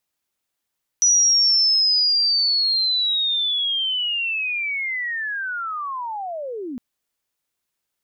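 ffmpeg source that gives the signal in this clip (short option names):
-f lavfi -i "aevalsrc='pow(10,(-12.5-15*t/5.76)/20)*sin(2*PI*(5900*t-5670*t*t/(2*5.76)))':d=5.76:s=44100"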